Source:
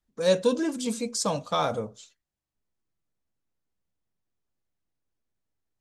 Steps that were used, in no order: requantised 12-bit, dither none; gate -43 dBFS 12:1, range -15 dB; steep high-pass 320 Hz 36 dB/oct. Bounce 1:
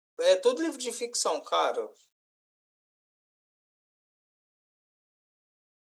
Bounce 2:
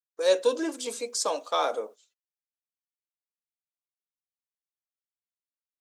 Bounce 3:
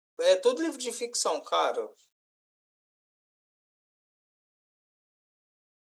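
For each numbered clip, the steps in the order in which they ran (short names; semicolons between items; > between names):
gate > steep high-pass > requantised; steep high-pass > requantised > gate; steep high-pass > gate > requantised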